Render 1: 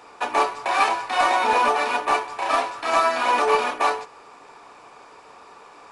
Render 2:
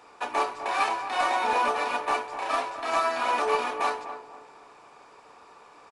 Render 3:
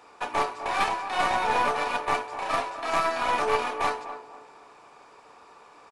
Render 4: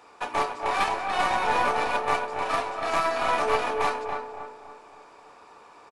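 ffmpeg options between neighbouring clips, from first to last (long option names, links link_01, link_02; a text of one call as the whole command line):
ffmpeg -i in.wav -filter_complex "[0:a]asplit=2[link_01][link_02];[link_02]adelay=249,lowpass=frequency=1200:poles=1,volume=-9dB,asplit=2[link_03][link_04];[link_04]adelay=249,lowpass=frequency=1200:poles=1,volume=0.41,asplit=2[link_05][link_06];[link_06]adelay=249,lowpass=frequency=1200:poles=1,volume=0.41,asplit=2[link_07][link_08];[link_08]adelay=249,lowpass=frequency=1200:poles=1,volume=0.41,asplit=2[link_09][link_10];[link_10]adelay=249,lowpass=frequency=1200:poles=1,volume=0.41[link_11];[link_01][link_03][link_05][link_07][link_09][link_11]amix=inputs=6:normalize=0,volume=-6dB" out.wav
ffmpeg -i in.wav -af "aeval=exprs='0.251*(cos(1*acos(clip(val(0)/0.251,-1,1)))-cos(1*PI/2))+0.0891*(cos(2*acos(clip(val(0)/0.251,-1,1)))-cos(2*PI/2))':channel_layout=same" out.wav
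ffmpeg -i in.wav -filter_complex "[0:a]asplit=2[link_01][link_02];[link_02]adelay=281,lowpass=frequency=1700:poles=1,volume=-5.5dB,asplit=2[link_03][link_04];[link_04]adelay=281,lowpass=frequency=1700:poles=1,volume=0.41,asplit=2[link_05][link_06];[link_06]adelay=281,lowpass=frequency=1700:poles=1,volume=0.41,asplit=2[link_07][link_08];[link_08]adelay=281,lowpass=frequency=1700:poles=1,volume=0.41,asplit=2[link_09][link_10];[link_10]adelay=281,lowpass=frequency=1700:poles=1,volume=0.41[link_11];[link_01][link_03][link_05][link_07][link_09][link_11]amix=inputs=6:normalize=0" out.wav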